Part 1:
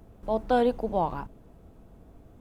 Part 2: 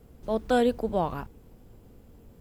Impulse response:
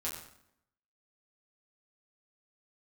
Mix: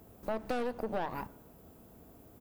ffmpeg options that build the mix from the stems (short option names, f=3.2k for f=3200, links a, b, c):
-filter_complex "[0:a]highpass=f=150:p=1,aeval=exprs='(tanh(20*val(0)+0.6)-tanh(0.6))/20':c=same,volume=1.5dB,asplit=2[a][b];[b]volume=-17.5dB[c];[1:a]acompressor=threshold=-33dB:ratio=6,aemphasis=mode=production:type=riaa,adelay=0.4,volume=-11.5dB[d];[2:a]atrim=start_sample=2205[e];[c][e]afir=irnorm=-1:irlink=0[f];[a][d][f]amix=inputs=3:normalize=0,acompressor=threshold=-30dB:ratio=6"